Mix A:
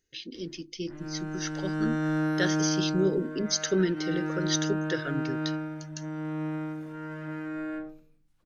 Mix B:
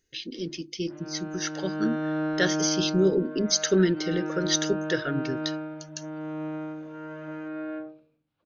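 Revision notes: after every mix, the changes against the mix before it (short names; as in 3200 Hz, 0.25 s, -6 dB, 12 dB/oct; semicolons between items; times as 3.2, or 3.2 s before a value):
speech +4.0 dB; background: add speaker cabinet 130–4000 Hz, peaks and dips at 180 Hz -9 dB, 590 Hz +6 dB, 1900 Hz -6 dB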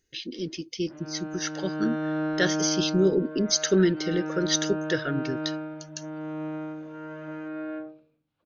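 speech: remove notches 50/100/150/200/250/300/350 Hz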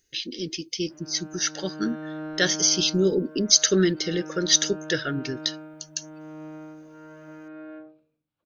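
speech: add high shelf 2900 Hz +9.5 dB; background -6.5 dB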